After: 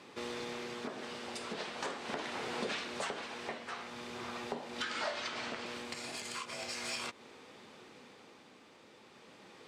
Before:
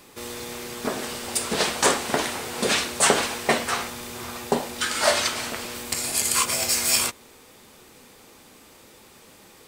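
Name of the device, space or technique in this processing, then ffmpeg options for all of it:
AM radio: -filter_complex "[0:a]highpass=140,lowpass=4200,acompressor=threshold=0.0251:ratio=6,asoftclip=type=tanh:threshold=0.0944,tremolo=f=0.4:d=0.4,asettb=1/sr,asplit=3[s0][s1][s2];[s0]atrim=end=4.824[s3];[s1]atrim=start=4.82:end=5.66,asetpts=PTS-STARTPTS,afade=t=in:d=0.004:c=qsin,afade=t=out:st=0.836:d=0.004:c=qsin,lowpass=8100[s4];[s2]atrim=start=5.656[s5];[s3][s4]acrossfade=d=0.004:c1=hsin:c2=qsin[s6];[s6][s5]acrossfade=d=0.004:c1=qsin:c2=hsin,volume=0.75"

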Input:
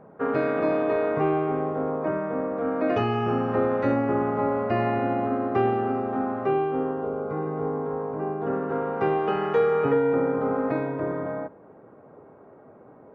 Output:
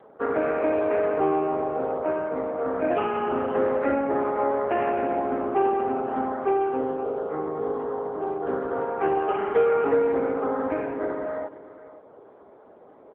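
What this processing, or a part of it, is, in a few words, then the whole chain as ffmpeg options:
satellite phone: -af "highpass=310,lowpass=3100,aecho=1:1:516:0.15,volume=1.33" -ar 8000 -c:a libopencore_amrnb -b:a 6700

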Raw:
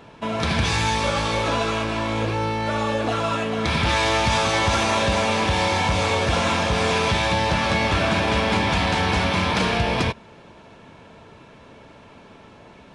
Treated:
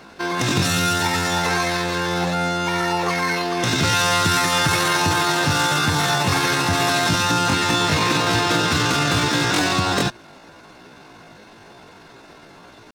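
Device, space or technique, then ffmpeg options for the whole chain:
chipmunk voice: -af "asetrate=70004,aresample=44100,atempo=0.629961,volume=1.26"

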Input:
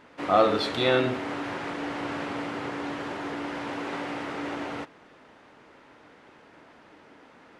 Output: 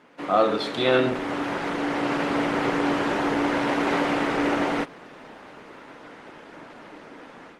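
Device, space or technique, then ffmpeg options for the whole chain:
video call: -af "highpass=f=130:w=0.5412,highpass=f=130:w=1.3066,dynaudnorm=f=680:g=3:m=3.55" -ar 48000 -c:a libopus -b:a 20k

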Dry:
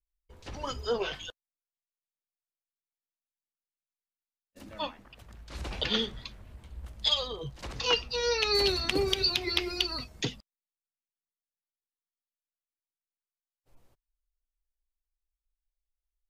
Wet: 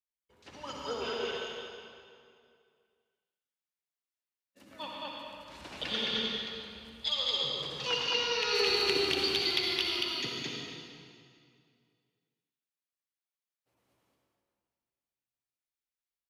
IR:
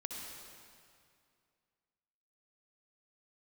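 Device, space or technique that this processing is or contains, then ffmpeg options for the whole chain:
stadium PA: -filter_complex "[0:a]highpass=140,equalizer=f=2300:t=o:w=2:g=4,aecho=1:1:148.7|215.7:0.316|0.891[s0];[1:a]atrim=start_sample=2205[s1];[s0][s1]afir=irnorm=-1:irlink=0,volume=0.562"

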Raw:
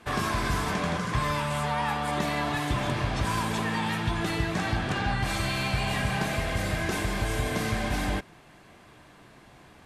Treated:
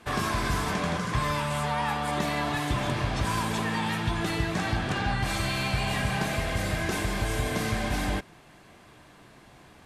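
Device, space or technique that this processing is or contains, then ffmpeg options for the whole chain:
exciter from parts: -filter_complex "[0:a]asplit=2[s0][s1];[s1]highpass=2700,asoftclip=type=tanh:threshold=0.0119,volume=0.2[s2];[s0][s2]amix=inputs=2:normalize=0"

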